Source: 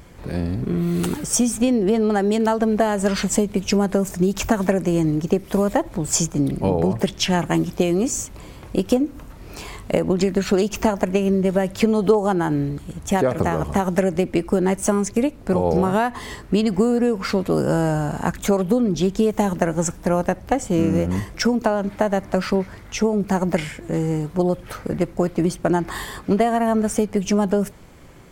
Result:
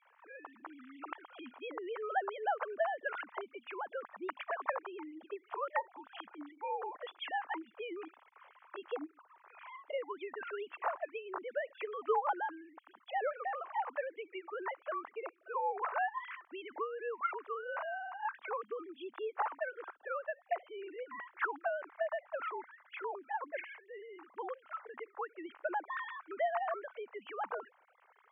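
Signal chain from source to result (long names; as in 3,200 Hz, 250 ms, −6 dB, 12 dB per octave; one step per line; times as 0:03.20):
three sine waves on the formant tracks
four-pole ladder band-pass 1,300 Hz, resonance 35%
level +1 dB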